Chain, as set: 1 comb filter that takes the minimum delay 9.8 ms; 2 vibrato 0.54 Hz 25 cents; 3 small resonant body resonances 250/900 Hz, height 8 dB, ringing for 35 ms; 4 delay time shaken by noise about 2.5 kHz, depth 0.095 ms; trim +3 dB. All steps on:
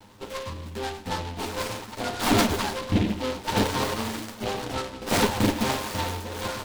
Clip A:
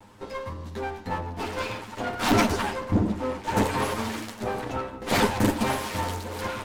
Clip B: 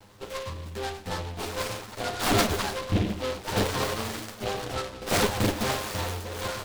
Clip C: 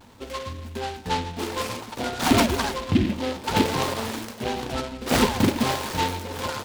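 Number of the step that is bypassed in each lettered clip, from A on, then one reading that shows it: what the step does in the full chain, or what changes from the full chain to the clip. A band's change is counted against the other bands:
4, 4 kHz band -4.0 dB; 3, 250 Hz band -4.0 dB; 1, loudness change +2.0 LU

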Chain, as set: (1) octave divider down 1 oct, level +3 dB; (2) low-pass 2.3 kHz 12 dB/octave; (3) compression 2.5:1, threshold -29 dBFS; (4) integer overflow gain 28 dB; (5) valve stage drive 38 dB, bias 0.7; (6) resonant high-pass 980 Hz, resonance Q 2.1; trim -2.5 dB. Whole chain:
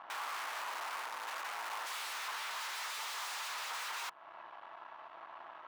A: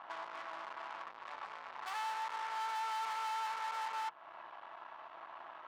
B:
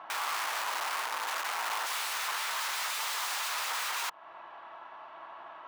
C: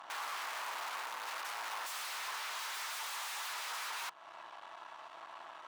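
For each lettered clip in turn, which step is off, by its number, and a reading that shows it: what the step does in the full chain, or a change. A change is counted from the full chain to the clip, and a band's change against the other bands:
4, 1 kHz band +9.0 dB; 5, crest factor change +2.0 dB; 2, 8 kHz band +1.5 dB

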